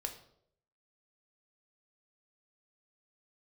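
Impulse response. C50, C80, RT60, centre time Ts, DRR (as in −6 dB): 10.5 dB, 13.5 dB, 0.70 s, 13 ms, 4.0 dB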